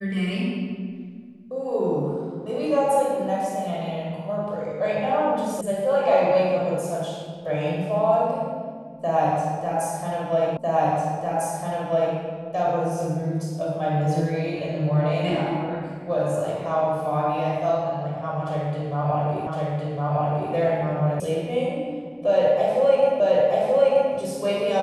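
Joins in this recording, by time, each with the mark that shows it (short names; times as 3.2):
5.61 sound cut off
10.57 repeat of the last 1.6 s
19.47 repeat of the last 1.06 s
21.2 sound cut off
23.2 repeat of the last 0.93 s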